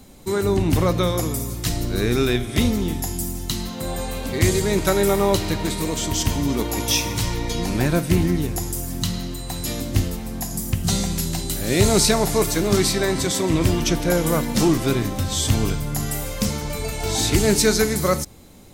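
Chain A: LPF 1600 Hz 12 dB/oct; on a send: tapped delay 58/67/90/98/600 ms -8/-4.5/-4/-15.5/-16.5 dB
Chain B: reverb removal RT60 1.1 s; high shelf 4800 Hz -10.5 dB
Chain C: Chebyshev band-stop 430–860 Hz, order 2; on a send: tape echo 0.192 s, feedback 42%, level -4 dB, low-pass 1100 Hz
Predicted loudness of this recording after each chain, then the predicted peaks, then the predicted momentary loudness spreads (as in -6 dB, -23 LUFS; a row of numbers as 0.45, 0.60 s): -20.0, -24.5, -22.0 LUFS; -3.0, -7.0, -5.5 dBFS; 10, 11, 9 LU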